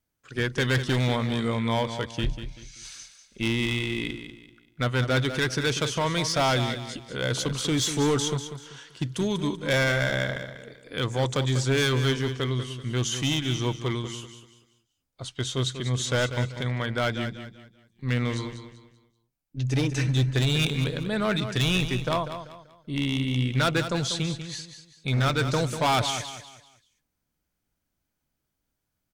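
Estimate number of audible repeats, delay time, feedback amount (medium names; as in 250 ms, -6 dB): 3, 193 ms, 33%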